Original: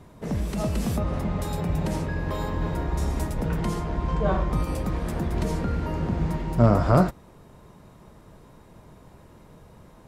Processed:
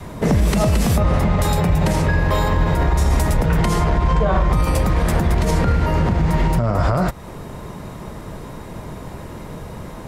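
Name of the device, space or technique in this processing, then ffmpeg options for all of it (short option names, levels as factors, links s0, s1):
mastering chain: -af "equalizer=f=2000:t=o:w=0.27:g=2.5,acompressor=threshold=0.0447:ratio=2,alimiter=level_in=15:limit=0.891:release=50:level=0:latency=1,adynamicequalizer=threshold=0.0562:dfrequency=280:dqfactor=1.1:tfrequency=280:tqfactor=1.1:attack=5:release=100:ratio=0.375:range=3:mode=cutabove:tftype=bell,volume=0.473"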